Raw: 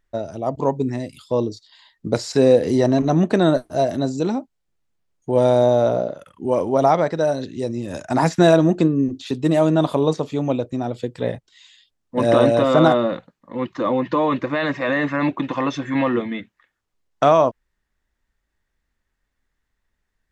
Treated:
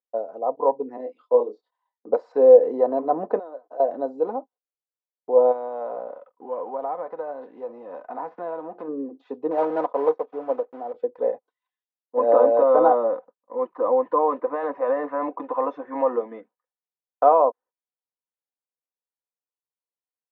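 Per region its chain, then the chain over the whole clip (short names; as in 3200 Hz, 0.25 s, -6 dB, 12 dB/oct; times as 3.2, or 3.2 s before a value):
0.97–2.09 HPF 220 Hz 24 dB/oct + doubler 24 ms -4 dB
3.39–3.8 expander -48 dBFS + tone controls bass -13 dB, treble +5 dB + compressor 5:1, threshold -32 dBFS
5.51–8.87 spectral whitening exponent 0.6 + air absorption 140 m + compressor 2.5:1, threshold -28 dBFS
9.51–10.94 block floating point 3-bit + upward expander, over -37 dBFS
whole clip: gate -45 dBFS, range -19 dB; Chebyshev band-pass 450–1000 Hz, order 2; comb 4 ms, depth 55%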